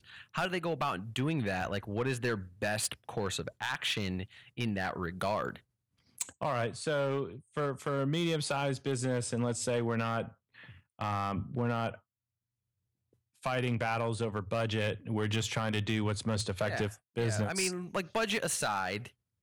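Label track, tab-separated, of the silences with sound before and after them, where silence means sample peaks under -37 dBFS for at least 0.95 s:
11.950000	13.430000	silence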